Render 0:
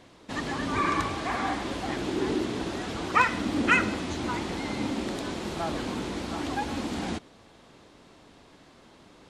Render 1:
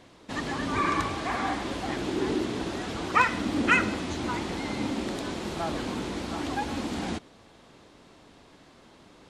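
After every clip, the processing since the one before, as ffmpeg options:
ffmpeg -i in.wav -af anull out.wav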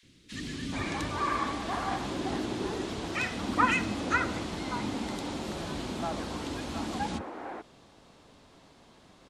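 ffmpeg -i in.wav -filter_complex "[0:a]acrossover=split=350|1900[link_01][link_02][link_03];[link_01]adelay=30[link_04];[link_02]adelay=430[link_05];[link_04][link_05][link_03]amix=inputs=3:normalize=0,volume=-1.5dB" out.wav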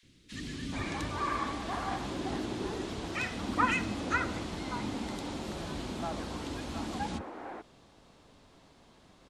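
ffmpeg -i in.wav -af "lowshelf=frequency=74:gain=5.5,volume=-3dB" out.wav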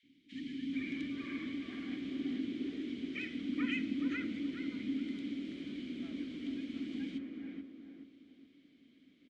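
ffmpeg -i in.wav -filter_complex "[0:a]asplit=3[link_01][link_02][link_03];[link_01]bandpass=frequency=270:width_type=q:width=8,volume=0dB[link_04];[link_02]bandpass=frequency=2290:width_type=q:width=8,volume=-6dB[link_05];[link_03]bandpass=frequency=3010:width_type=q:width=8,volume=-9dB[link_06];[link_04][link_05][link_06]amix=inputs=3:normalize=0,asplit=2[link_07][link_08];[link_08]adelay=425,lowpass=frequency=1300:poles=1,volume=-5dB,asplit=2[link_09][link_10];[link_10]adelay=425,lowpass=frequency=1300:poles=1,volume=0.38,asplit=2[link_11][link_12];[link_12]adelay=425,lowpass=frequency=1300:poles=1,volume=0.38,asplit=2[link_13][link_14];[link_14]adelay=425,lowpass=frequency=1300:poles=1,volume=0.38,asplit=2[link_15][link_16];[link_16]adelay=425,lowpass=frequency=1300:poles=1,volume=0.38[link_17];[link_07][link_09][link_11][link_13][link_15][link_17]amix=inputs=6:normalize=0,volume=5dB" out.wav

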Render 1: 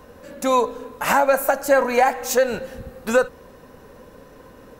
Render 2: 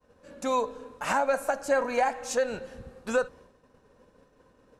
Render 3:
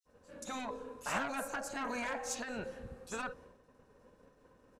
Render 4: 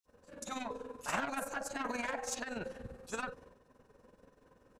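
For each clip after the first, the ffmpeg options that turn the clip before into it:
ffmpeg -i in.wav -af "lowpass=frequency=9800:width=0.5412,lowpass=frequency=9800:width=1.3066,agate=range=-33dB:threshold=-38dB:ratio=3:detection=peak,bandreject=frequency=2000:width=21,volume=-8.5dB" out.wav
ffmpeg -i in.wav -filter_complex "[0:a]acrossover=split=3900[link_01][link_02];[link_01]adelay=50[link_03];[link_03][link_02]amix=inputs=2:normalize=0,aeval=exprs='0.188*(cos(1*acos(clip(val(0)/0.188,-1,1)))-cos(1*PI/2))+0.015*(cos(5*acos(clip(val(0)/0.188,-1,1)))-cos(5*PI/2))':channel_layout=same,afftfilt=real='re*lt(hypot(re,im),0.251)':imag='im*lt(hypot(re,im),0.251)':win_size=1024:overlap=0.75,volume=-6dB" out.wav
ffmpeg -i in.wav -af "tremolo=f=21:d=0.621,volume=3dB" out.wav

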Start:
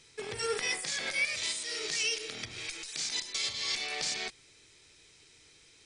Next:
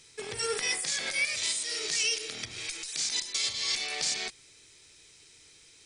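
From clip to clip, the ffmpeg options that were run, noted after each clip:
ffmpeg -i in.wav -af "highshelf=frequency=5800:gain=8.5" out.wav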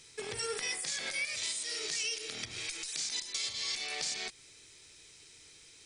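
ffmpeg -i in.wav -af "acompressor=threshold=-37dB:ratio=2" out.wav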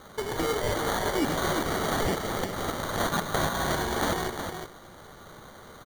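ffmpeg -i in.wav -af "acrusher=samples=17:mix=1:aa=0.000001,aecho=1:1:364:0.447,volume=8.5dB" out.wav

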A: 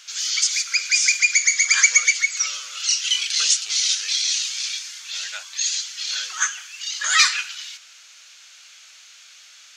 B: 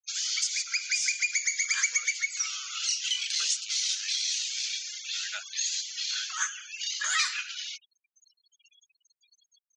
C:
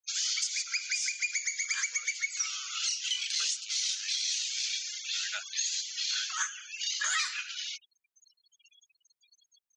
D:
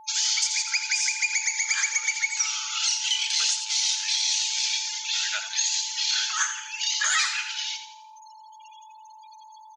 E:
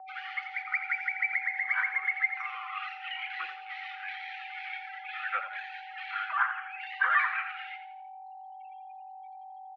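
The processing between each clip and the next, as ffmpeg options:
ffmpeg -i in.wav -af "afftfilt=real='re*gte(hypot(re,im),0.0158)':imag='im*gte(hypot(re,im),0.0158)':win_size=1024:overlap=0.75,acompressor=threshold=-33dB:ratio=2" out.wav
ffmpeg -i in.wav -af "alimiter=limit=-19.5dB:level=0:latency=1:release=467" out.wav
ffmpeg -i in.wav -filter_complex "[0:a]aeval=exprs='val(0)+0.00251*sin(2*PI*870*n/s)':channel_layout=same,asplit=6[link_01][link_02][link_03][link_04][link_05][link_06];[link_02]adelay=85,afreqshift=46,volume=-9.5dB[link_07];[link_03]adelay=170,afreqshift=92,volume=-16.6dB[link_08];[link_04]adelay=255,afreqshift=138,volume=-23.8dB[link_09];[link_05]adelay=340,afreqshift=184,volume=-30.9dB[link_10];[link_06]adelay=425,afreqshift=230,volume=-38dB[link_11];[link_01][link_07][link_08][link_09][link_10][link_11]amix=inputs=6:normalize=0,volume=6.5dB" out.wav
ffmpeg -i in.wav -af "highpass=frequency=590:width_type=q:width=0.5412,highpass=frequency=590:width_type=q:width=1.307,lowpass=frequency=2200:width_type=q:width=0.5176,lowpass=frequency=2200:width_type=q:width=0.7071,lowpass=frequency=2200:width_type=q:width=1.932,afreqshift=-110,volume=2dB" out.wav

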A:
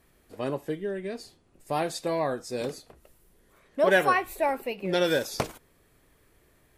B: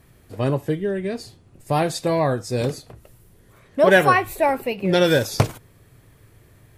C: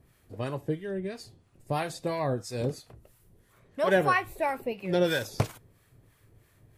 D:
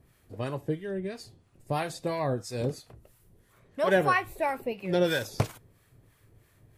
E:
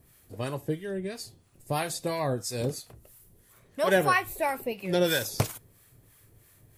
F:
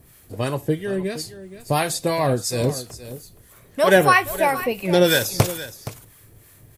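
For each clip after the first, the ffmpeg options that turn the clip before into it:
ffmpeg -i in.wav -af "equalizer=frequency=110:width_type=o:width=0.98:gain=14.5,volume=6.5dB" out.wav
ffmpeg -i in.wav -filter_complex "[0:a]acrossover=split=800[link_01][link_02];[link_01]aeval=exprs='val(0)*(1-0.7/2+0.7/2*cos(2*PI*3*n/s))':channel_layout=same[link_03];[link_02]aeval=exprs='val(0)*(1-0.7/2-0.7/2*cos(2*PI*3*n/s))':channel_layout=same[link_04];[link_03][link_04]amix=inputs=2:normalize=0,volume=-5.5dB" out.wav
ffmpeg -i in.wav -af anull out.wav
ffmpeg -i in.wav -af "crystalizer=i=2:c=0" out.wav
ffmpeg -i in.wav -af "aecho=1:1:470:0.188,volume=8.5dB" out.wav

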